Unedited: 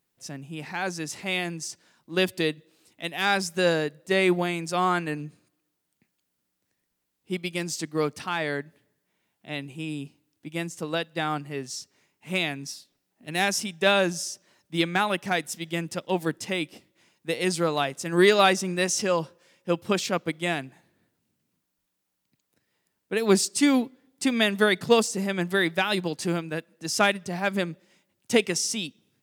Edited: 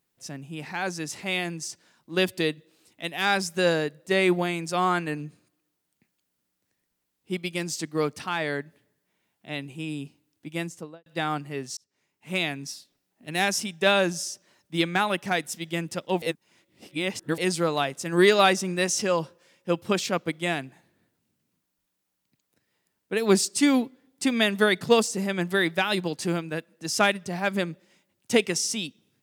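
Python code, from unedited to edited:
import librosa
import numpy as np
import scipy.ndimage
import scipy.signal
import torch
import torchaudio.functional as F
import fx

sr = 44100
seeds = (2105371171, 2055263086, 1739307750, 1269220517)

y = fx.studio_fade_out(x, sr, start_s=10.62, length_s=0.44)
y = fx.edit(y, sr, fx.fade_in_span(start_s=11.77, length_s=0.65),
    fx.reverse_span(start_s=16.22, length_s=1.16), tone=tone)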